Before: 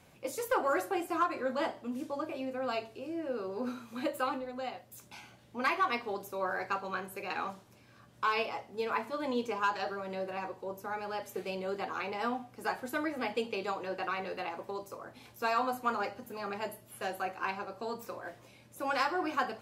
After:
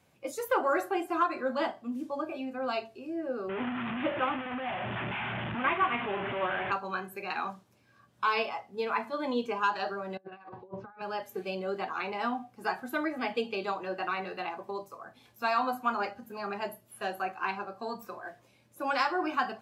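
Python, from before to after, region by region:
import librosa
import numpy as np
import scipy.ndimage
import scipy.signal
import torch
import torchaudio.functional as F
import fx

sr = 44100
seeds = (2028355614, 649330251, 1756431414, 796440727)

y = fx.chain(x, sr, fx.delta_mod(bps=16000, step_db=-30.0),
    fx.highpass(hz=86.0, slope=12), at=(3.49, 6.72))
y = fx.chain(y, sr, fx.lowpass(hz=4000.0, slope=24),
    fx.over_compress(threshold_db=-44.0, ratio=-0.5),
    fx.band_widen(depth_pct=100), at=(10.17, 11.02))
y = scipy.signal.sosfilt(scipy.signal.butter(2, 54.0, 'highpass', fs=sr, output='sos'), y)
y = fx.noise_reduce_blind(y, sr, reduce_db=9)
y = y * 10.0 ** (2.5 / 20.0)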